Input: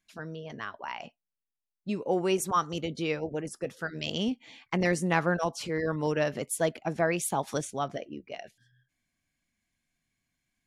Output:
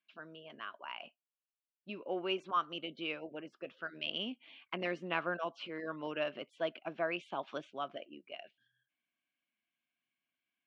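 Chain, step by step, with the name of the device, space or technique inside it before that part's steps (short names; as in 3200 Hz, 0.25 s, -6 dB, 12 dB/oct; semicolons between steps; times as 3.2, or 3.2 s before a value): phone earpiece (speaker cabinet 400–3100 Hz, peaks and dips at 460 Hz -9 dB, 830 Hz -9 dB, 1900 Hz -9 dB, 2900 Hz +6 dB); gain -3.5 dB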